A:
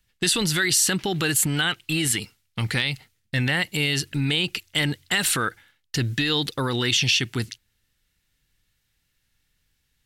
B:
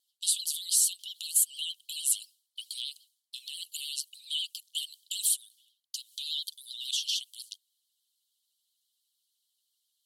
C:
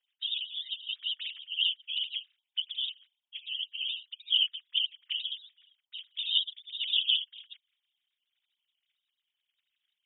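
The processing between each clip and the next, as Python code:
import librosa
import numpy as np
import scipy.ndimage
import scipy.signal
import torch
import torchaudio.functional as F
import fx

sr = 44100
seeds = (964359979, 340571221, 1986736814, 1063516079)

y1 = scipy.signal.sosfilt(scipy.signal.cheby1(6, 6, 3000.0, 'highpass', fs=sr, output='sos'), x)
y1 = fx.dynamic_eq(y1, sr, hz=4300.0, q=1.4, threshold_db=-42.0, ratio=4.0, max_db=-6)
y1 = fx.vibrato(y1, sr, rate_hz=13.0, depth_cents=86.0)
y2 = fx.sine_speech(y1, sr)
y2 = fx.whisperise(y2, sr, seeds[0])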